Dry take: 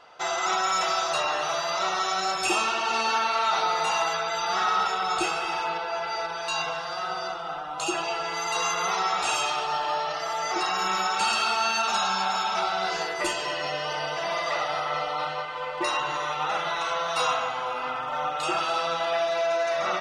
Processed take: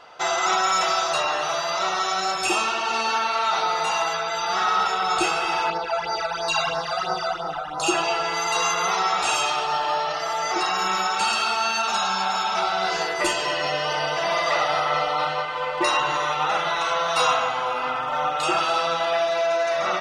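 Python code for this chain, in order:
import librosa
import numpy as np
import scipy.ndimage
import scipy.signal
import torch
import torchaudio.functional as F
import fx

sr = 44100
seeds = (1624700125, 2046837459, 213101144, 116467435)

y = fx.phaser_stages(x, sr, stages=12, low_hz=290.0, high_hz=3100.0, hz=3.0, feedback_pct=25, at=(5.7, 7.84))
y = fx.rider(y, sr, range_db=5, speed_s=2.0)
y = y * 10.0 ** (3.5 / 20.0)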